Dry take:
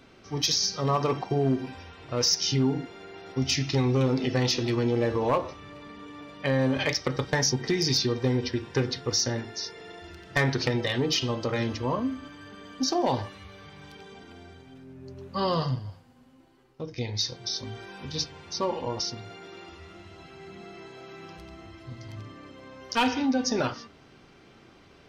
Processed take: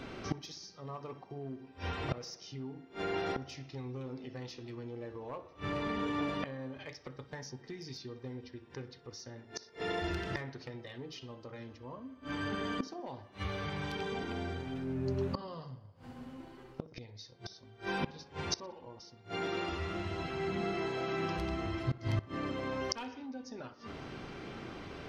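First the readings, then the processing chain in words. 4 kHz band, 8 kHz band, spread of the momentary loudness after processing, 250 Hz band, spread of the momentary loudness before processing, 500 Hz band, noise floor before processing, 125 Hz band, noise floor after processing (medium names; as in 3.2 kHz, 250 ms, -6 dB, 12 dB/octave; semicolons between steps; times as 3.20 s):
-15.0 dB, -18.0 dB, 13 LU, -10.0 dB, 21 LU, -9.5 dB, -55 dBFS, -10.5 dB, -58 dBFS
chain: treble shelf 4.7 kHz -9 dB; inverted gate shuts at -31 dBFS, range -28 dB; tape echo 62 ms, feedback 76%, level -17.5 dB, low-pass 2.7 kHz; trim +9.5 dB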